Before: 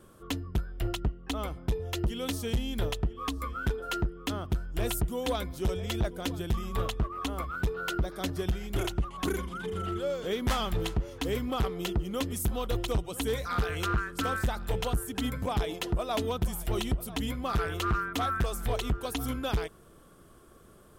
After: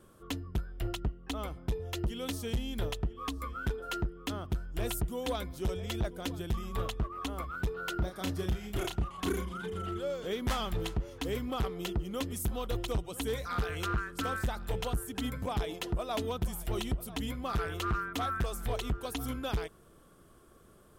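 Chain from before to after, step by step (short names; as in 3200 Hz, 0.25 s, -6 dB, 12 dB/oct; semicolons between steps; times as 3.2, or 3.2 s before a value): 7.95–9.68 doubler 33 ms -5 dB; gain -3.5 dB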